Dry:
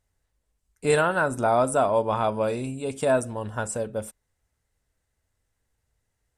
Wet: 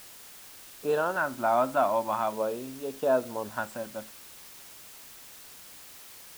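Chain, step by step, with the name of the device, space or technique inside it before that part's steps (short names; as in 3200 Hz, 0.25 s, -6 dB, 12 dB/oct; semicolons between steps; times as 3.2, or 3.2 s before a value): shortwave radio (BPF 260–2600 Hz; tremolo 0.56 Hz, depth 41%; LFO notch square 0.43 Hz 450–2100 Hz; white noise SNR 17 dB)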